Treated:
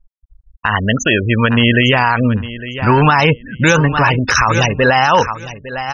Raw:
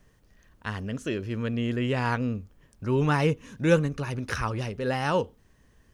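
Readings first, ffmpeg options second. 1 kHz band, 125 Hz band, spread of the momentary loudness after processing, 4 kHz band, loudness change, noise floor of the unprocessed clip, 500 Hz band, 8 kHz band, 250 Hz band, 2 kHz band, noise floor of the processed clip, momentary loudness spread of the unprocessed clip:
+18.5 dB, +13.0 dB, 10 LU, +21.0 dB, +14.5 dB, −62 dBFS, +11.0 dB, +20.5 dB, +12.5 dB, +19.0 dB, −55 dBFS, 12 LU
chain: -filter_complex "[0:a]afftfilt=real='re*gte(hypot(re,im),0.0158)':imag='im*gte(hypot(re,im),0.0158)':win_size=1024:overlap=0.75,lowshelf=frequency=590:width_type=q:width=1.5:gain=-9,asplit=2[link_01][link_02];[link_02]acompressor=threshold=-39dB:ratio=6,volume=0dB[link_03];[link_01][link_03]amix=inputs=2:normalize=0,lowpass=frequency=6800:width_type=q:width=3,aecho=1:1:855|1710:0.158|0.0269,alimiter=level_in=22.5dB:limit=-1dB:release=50:level=0:latency=1,volume=-1dB"

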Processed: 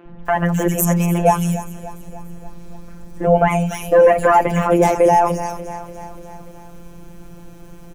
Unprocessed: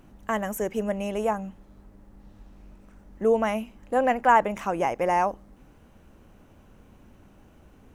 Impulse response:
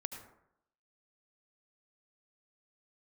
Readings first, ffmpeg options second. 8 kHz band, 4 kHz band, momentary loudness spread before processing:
+15.5 dB, can't be measured, 9 LU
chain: -filter_complex "[0:a]asplit=2[link_01][link_02];[link_02]aecho=0:1:292|584|876|1168|1460:0.133|0.0773|0.0449|0.026|0.0151[link_03];[link_01][link_03]amix=inputs=2:normalize=0,afftfilt=real='hypot(re,im)*cos(PI*b)':imag='0':win_size=1024:overlap=0.75,apsyclip=20dB,equalizer=frequency=1200:width_type=o:width=3:gain=-7,acrossover=split=240|2800[link_04][link_05][link_06];[link_04]adelay=60[link_07];[link_06]adelay=260[link_08];[link_07][link_05][link_08]amix=inputs=3:normalize=0,volume=1.5dB"

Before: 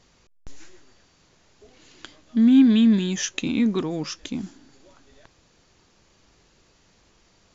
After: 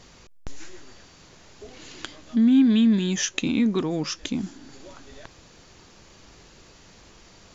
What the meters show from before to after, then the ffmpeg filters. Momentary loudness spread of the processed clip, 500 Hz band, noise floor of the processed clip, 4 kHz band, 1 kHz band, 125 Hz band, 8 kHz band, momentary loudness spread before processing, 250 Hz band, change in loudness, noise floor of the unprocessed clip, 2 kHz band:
21 LU, +0.5 dB, −52 dBFS, +1.0 dB, +1.0 dB, 0.0 dB, can't be measured, 18 LU, −1.5 dB, −1.5 dB, −61 dBFS, +1.0 dB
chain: -af "acompressor=threshold=-45dB:ratio=1.5,volume=9dB"

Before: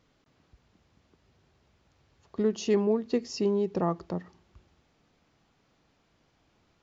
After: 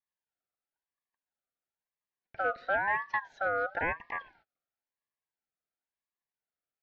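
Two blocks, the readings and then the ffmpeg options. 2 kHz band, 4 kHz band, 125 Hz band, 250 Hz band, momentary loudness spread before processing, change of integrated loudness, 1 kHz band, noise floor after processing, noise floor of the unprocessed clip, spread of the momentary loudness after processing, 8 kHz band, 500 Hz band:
+17.5 dB, −13.0 dB, −16.0 dB, −21.5 dB, 12 LU, −3.0 dB, +6.5 dB, below −85 dBFS, −70 dBFS, 11 LU, can't be measured, −8.5 dB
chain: -filter_complex "[0:a]highpass=frequency=160:width_type=q:width=0.5412,highpass=frequency=160:width_type=q:width=1.307,lowpass=frequency=3500:width_type=q:width=0.5176,lowpass=frequency=3500:width_type=q:width=0.7071,lowpass=frequency=3500:width_type=q:width=1.932,afreqshift=68,agate=range=-28dB:threshold=-58dB:ratio=16:detection=peak,acrossover=split=300|560|1800[link_01][link_02][link_03][link_04];[link_02]asoftclip=type=tanh:threshold=-29.5dB[link_05];[link_04]acompressor=threshold=-59dB:ratio=6[link_06];[link_01][link_05][link_03][link_06]amix=inputs=4:normalize=0,aeval=exprs='val(0)*sin(2*PI*1200*n/s+1200*0.2/0.98*sin(2*PI*0.98*n/s))':channel_layout=same"

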